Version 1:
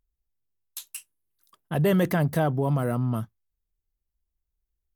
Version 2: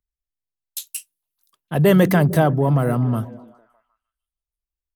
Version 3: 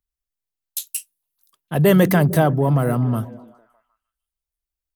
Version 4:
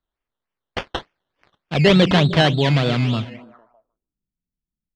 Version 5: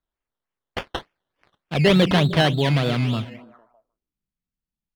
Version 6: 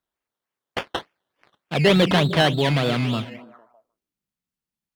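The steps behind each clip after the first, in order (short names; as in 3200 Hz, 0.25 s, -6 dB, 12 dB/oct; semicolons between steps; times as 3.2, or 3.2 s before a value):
on a send: delay with a stepping band-pass 0.152 s, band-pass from 190 Hz, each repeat 0.7 oct, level -10 dB; on the sum: three-band expander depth 40%; gain +6.5 dB
high shelf 8000 Hz +5 dB
decimation with a swept rate 15×, swing 60% 3.4 Hz; low-pass sweep 3500 Hz -> 190 Hz, 3.24–4.2
median filter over 5 samples; gain -2.5 dB
HPF 180 Hz 6 dB/oct; in parallel at -8 dB: hard clip -23 dBFS, distortion -5 dB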